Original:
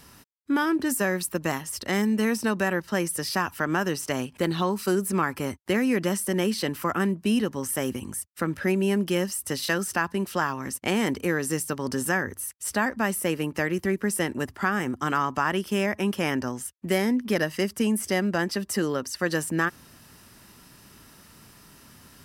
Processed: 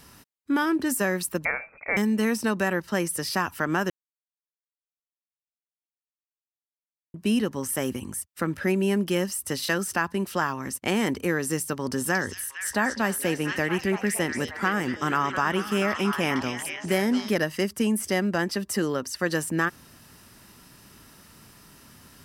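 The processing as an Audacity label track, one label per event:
1.450000	1.970000	inverted band carrier 2500 Hz
3.900000	7.140000	mute
11.810000	17.310000	delay with a stepping band-pass 0.23 s, band-pass from 4400 Hz, each repeat -0.7 oct, level 0 dB

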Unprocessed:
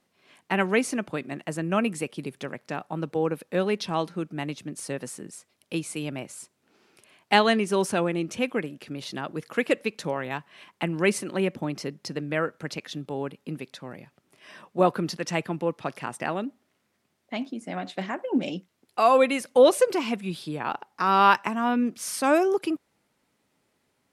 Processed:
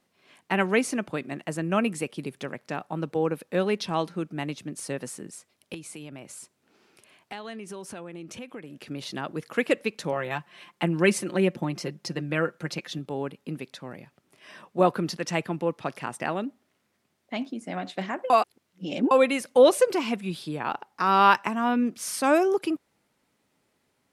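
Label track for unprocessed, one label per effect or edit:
5.740000	8.780000	compressor 4:1, threshold -38 dBFS
10.120000	12.990000	comb 5.7 ms, depth 52%
18.300000	19.110000	reverse

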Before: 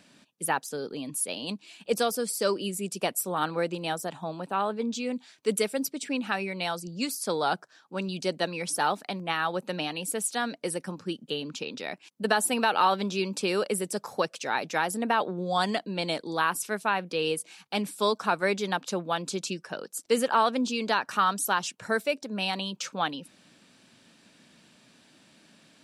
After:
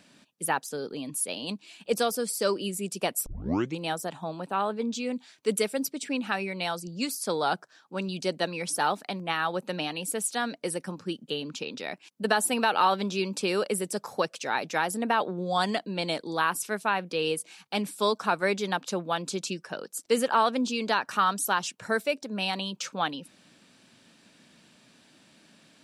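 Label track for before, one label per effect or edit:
3.260000	3.260000	tape start 0.52 s

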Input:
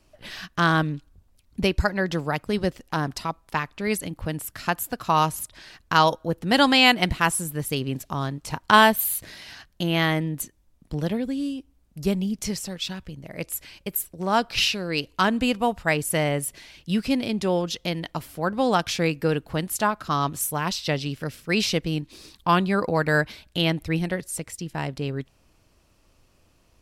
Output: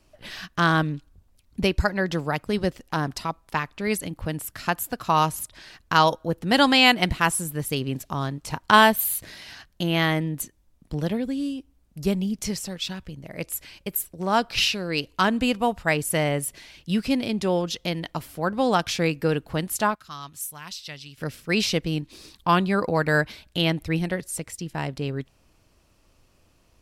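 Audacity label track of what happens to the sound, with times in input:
19.950000	21.180000	passive tone stack bass-middle-treble 5-5-5

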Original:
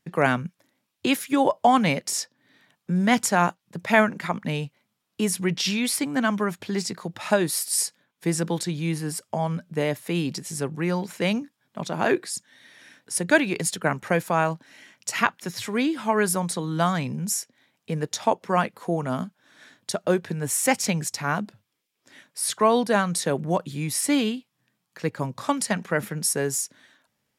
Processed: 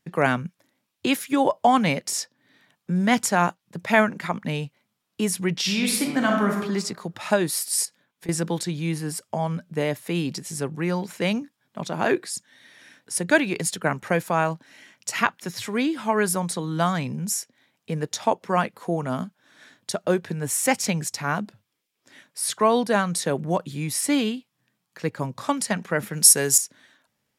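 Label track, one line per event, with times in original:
5.630000	6.590000	reverb throw, RT60 0.9 s, DRR 1 dB
7.850000	8.290000	compressor 4:1, threshold -39 dBFS
26.130000	26.580000	high shelf 2500 Hz +12 dB

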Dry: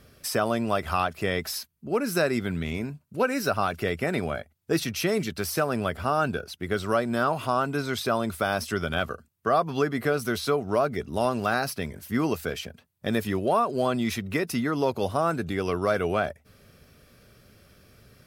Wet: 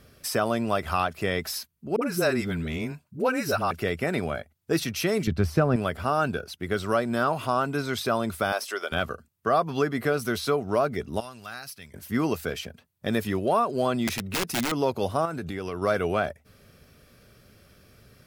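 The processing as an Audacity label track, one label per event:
1.960000	3.710000	dispersion highs, late by 56 ms, half as late at 470 Hz
5.270000	5.760000	RIAA curve playback
8.520000	8.920000	HPF 410 Hz 24 dB/oct
11.200000	11.940000	passive tone stack bass-middle-treble 5-5-5
14.070000	14.720000	wrapped overs gain 21 dB
15.250000	15.820000	compressor 3:1, threshold -29 dBFS

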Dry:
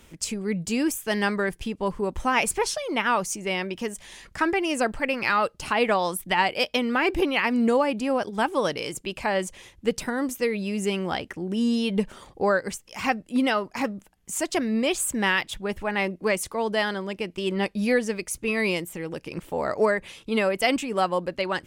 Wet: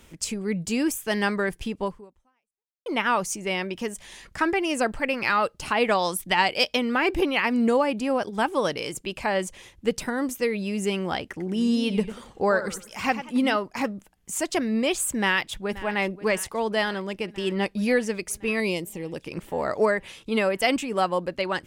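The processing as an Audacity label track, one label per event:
1.840000	2.860000	fade out exponential
5.880000	6.750000	dynamic EQ 5500 Hz, up to +6 dB, over -42 dBFS, Q 0.8
11.280000	13.560000	warbling echo 92 ms, feedback 32%, depth 179 cents, level -12 dB
15.180000	15.860000	echo throw 0.53 s, feedback 75%, level -17 dB
18.600000	19.160000	bell 1500 Hz -13 dB 0.76 oct

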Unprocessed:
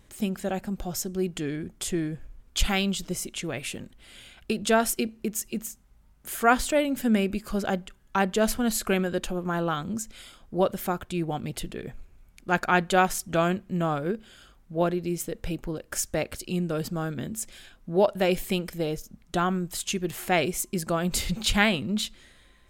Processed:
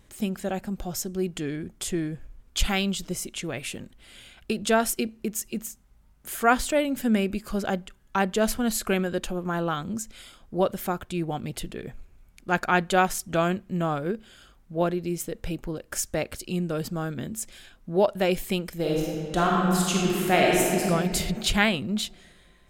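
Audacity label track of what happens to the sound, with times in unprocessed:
18.750000	20.850000	reverb throw, RT60 2.4 s, DRR -3.5 dB

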